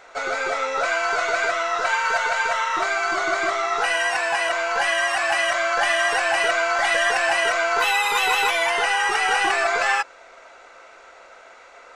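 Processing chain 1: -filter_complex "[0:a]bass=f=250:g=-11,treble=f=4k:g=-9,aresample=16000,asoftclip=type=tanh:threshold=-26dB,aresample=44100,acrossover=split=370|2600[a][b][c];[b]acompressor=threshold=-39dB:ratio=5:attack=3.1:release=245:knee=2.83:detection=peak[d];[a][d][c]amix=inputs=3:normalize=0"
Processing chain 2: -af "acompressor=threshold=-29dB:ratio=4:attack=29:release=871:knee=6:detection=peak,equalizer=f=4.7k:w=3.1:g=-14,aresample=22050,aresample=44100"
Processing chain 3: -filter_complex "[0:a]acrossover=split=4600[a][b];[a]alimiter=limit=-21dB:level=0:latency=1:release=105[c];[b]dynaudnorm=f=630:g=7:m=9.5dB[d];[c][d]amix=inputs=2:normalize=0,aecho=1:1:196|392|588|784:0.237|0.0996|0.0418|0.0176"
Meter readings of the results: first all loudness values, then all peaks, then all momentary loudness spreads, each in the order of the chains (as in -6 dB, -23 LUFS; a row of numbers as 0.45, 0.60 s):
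-34.0, -30.0, -24.0 LUFS; -22.5, -19.0, -11.0 dBFS; 14, 16, 7 LU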